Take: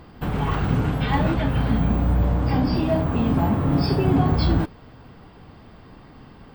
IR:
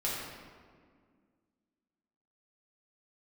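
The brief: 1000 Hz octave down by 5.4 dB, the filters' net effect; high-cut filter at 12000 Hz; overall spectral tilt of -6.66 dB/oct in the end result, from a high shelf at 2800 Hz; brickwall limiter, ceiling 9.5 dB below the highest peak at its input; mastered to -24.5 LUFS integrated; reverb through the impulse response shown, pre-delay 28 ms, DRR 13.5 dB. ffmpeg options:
-filter_complex "[0:a]lowpass=12k,equalizer=f=1k:t=o:g=-8,highshelf=f=2.8k:g=5,alimiter=limit=-16dB:level=0:latency=1,asplit=2[a][b];[1:a]atrim=start_sample=2205,adelay=28[c];[b][c]afir=irnorm=-1:irlink=0,volume=-20dB[d];[a][d]amix=inputs=2:normalize=0,volume=0.5dB"

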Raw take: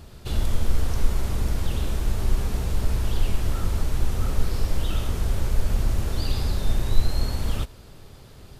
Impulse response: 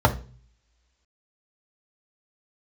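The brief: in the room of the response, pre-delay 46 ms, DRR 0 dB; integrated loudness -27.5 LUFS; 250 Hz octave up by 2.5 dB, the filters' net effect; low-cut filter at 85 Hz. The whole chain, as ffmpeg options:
-filter_complex "[0:a]highpass=85,equalizer=f=250:t=o:g=3.5,asplit=2[a][b];[1:a]atrim=start_sample=2205,adelay=46[c];[b][c]afir=irnorm=-1:irlink=0,volume=-19dB[d];[a][d]amix=inputs=2:normalize=0,volume=-8.5dB"

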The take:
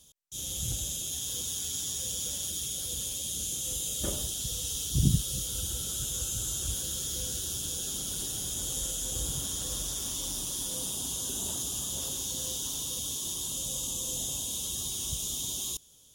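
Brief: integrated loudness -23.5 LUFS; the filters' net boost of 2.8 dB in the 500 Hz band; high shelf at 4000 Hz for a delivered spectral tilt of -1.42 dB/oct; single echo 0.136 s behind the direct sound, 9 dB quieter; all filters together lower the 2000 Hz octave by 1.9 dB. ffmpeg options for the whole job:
-af "equalizer=f=500:t=o:g=3.5,equalizer=f=2k:t=o:g=-5.5,highshelf=f=4k:g=6,aecho=1:1:136:0.355,volume=3dB"

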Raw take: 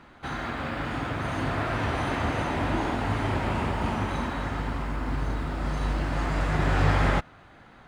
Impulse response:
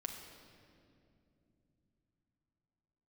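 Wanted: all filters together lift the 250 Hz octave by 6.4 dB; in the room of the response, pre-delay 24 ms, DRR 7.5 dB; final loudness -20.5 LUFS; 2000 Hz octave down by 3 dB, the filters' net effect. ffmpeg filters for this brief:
-filter_complex "[0:a]equalizer=f=250:t=o:g=8,equalizer=f=2k:t=o:g=-4,asplit=2[a][b];[1:a]atrim=start_sample=2205,adelay=24[c];[b][c]afir=irnorm=-1:irlink=0,volume=-6dB[d];[a][d]amix=inputs=2:normalize=0,volume=5dB"

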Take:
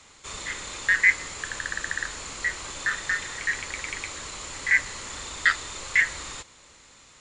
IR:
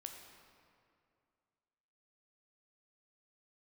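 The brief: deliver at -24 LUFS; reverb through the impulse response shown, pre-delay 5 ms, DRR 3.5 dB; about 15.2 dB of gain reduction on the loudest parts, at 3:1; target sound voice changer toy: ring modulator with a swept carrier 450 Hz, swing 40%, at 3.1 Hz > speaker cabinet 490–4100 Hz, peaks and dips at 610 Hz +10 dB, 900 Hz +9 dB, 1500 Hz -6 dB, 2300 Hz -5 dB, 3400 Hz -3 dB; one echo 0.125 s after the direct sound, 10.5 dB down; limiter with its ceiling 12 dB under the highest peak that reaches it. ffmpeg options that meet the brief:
-filter_complex "[0:a]acompressor=threshold=-36dB:ratio=3,alimiter=level_in=6dB:limit=-24dB:level=0:latency=1,volume=-6dB,aecho=1:1:125:0.299,asplit=2[a][b];[1:a]atrim=start_sample=2205,adelay=5[c];[b][c]afir=irnorm=-1:irlink=0,volume=0.5dB[d];[a][d]amix=inputs=2:normalize=0,aeval=exprs='val(0)*sin(2*PI*450*n/s+450*0.4/3.1*sin(2*PI*3.1*n/s))':c=same,highpass=490,equalizer=f=610:t=q:w=4:g=10,equalizer=f=900:t=q:w=4:g=9,equalizer=f=1.5k:t=q:w=4:g=-6,equalizer=f=2.3k:t=q:w=4:g=-5,equalizer=f=3.4k:t=q:w=4:g=-3,lowpass=f=4.1k:w=0.5412,lowpass=f=4.1k:w=1.3066,volume=19.5dB"

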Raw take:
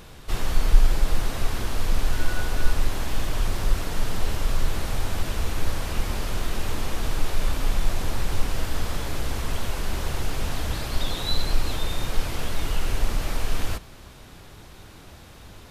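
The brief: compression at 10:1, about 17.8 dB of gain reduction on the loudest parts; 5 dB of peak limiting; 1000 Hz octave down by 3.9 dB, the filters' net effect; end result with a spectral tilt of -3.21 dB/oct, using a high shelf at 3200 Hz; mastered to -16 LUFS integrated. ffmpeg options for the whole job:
-af "equalizer=f=1k:t=o:g=-6,highshelf=f=3.2k:g=7,acompressor=threshold=-26dB:ratio=10,volume=22dB,alimiter=limit=-1.5dB:level=0:latency=1"

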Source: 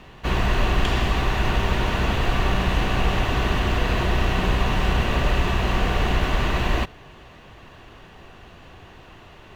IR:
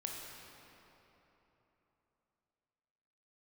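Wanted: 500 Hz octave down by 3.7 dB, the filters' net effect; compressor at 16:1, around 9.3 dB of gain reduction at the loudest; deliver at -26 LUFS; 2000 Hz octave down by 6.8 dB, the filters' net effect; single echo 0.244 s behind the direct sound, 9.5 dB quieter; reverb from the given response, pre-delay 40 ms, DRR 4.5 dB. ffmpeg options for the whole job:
-filter_complex "[0:a]equalizer=f=500:t=o:g=-4.5,equalizer=f=2k:t=o:g=-9,acompressor=threshold=-25dB:ratio=16,aecho=1:1:244:0.335,asplit=2[a][b];[1:a]atrim=start_sample=2205,adelay=40[c];[b][c]afir=irnorm=-1:irlink=0,volume=-4.5dB[d];[a][d]amix=inputs=2:normalize=0,volume=5.5dB"

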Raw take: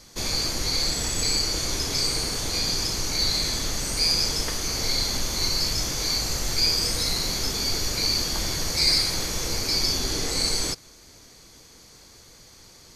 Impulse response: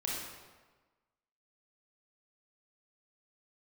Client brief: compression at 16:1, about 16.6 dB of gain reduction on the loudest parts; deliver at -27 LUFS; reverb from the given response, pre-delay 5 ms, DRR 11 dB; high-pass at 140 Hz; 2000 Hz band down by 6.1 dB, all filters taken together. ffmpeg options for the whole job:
-filter_complex "[0:a]highpass=140,equalizer=f=2k:t=o:g=-7.5,acompressor=threshold=-35dB:ratio=16,asplit=2[a][b];[1:a]atrim=start_sample=2205,adelay=5[c];[b][c]afir=irnorm=-1:irlink=0,volume=-15dB[d];[a][d]amix=inputs=2:normalize=0,volume=9dB"

